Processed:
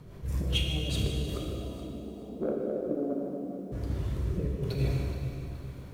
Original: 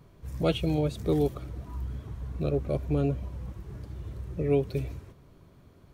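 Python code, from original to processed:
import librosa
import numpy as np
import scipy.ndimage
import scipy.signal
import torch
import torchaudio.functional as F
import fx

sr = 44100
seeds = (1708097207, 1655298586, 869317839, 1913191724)

y = fx.ellip_bandpass(x, sr, low_hz=210.0, high_hz=720.0, order=3, stop_db=40, at=(1.36, 3.71), fade=0.02)
y = fx.over_compress(y, sr, threshold_db=-32.0, ratio=-0.5)
y = 10.0 ** (-22.5 / 20.0) * np.tanh(y / 10.0 ** (-22.5 / 20.0))
y = fx.rotary_switch(y, sr, hz=5.0, then_hz=1.2, switch_at_s=1.06)
y = fx.echo_feedback(y, sr, ms=151, feedback_pct=53, wet_db=-12.0)
y = fx.rev_plate(y, sr, seeds[0], rt60_s=2.5, hf_ratio=0.9, predelay_ms=0, drr_db=0.0)
y = fx.echo_crushed(y, sr, ms=424, feedback_pct=35, bits=10, wet_db=-13.5)
y = y * 10.0 ** (3.0 / 20.0)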